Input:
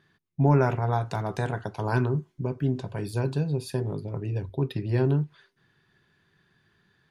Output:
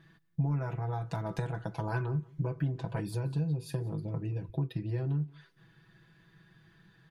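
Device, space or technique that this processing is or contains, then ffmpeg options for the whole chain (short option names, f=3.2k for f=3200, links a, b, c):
ASMR close-microphone chain: -filter_complex "[0:a]bass=f=250:g=2,treble=f=4k:g=-4,lowshelf=f=140:g=5.5,acompressor=threshold=-34dB:ratio=5,highshelf=f=9.4k:g=5.5,aecho=1:1:6.1:0.88,asettb=1/sr,asplit=3[a][b][c];[a]atrim=end=1.944[d];[b]atrim=start=1.94:end=3.01,asetpts=PTS-STARTPTS,afade=t=in:d=0.004:c=qsin,afade=t=out:st=1.066:d=0.004:c=qsin,equalizer=f=1.3k:w=0.4:g=6[e];[c]atrim=start=3.006[f];[d][e]acrossfade=d=0.004:c1=hsin:c2=qsin[g];[g][f]acrossfade=d=0.004:c1=qsin:c2=hsin,aecho=1:1:178:0.0668"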